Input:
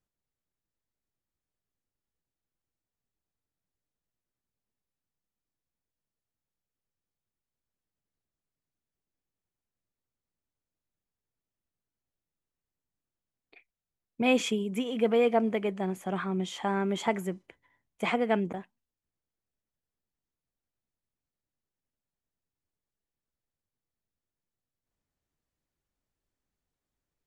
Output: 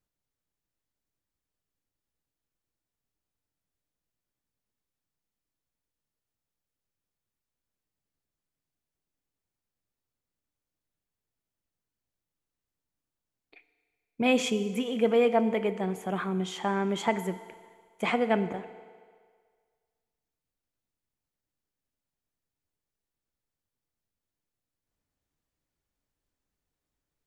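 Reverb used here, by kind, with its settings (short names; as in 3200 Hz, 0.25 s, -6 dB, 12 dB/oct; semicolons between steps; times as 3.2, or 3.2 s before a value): FDN reverb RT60 1.8 s, low-frequency decay 0.7×, high-frequency decay 0.95×, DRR 11.5 dB; gain +1 dB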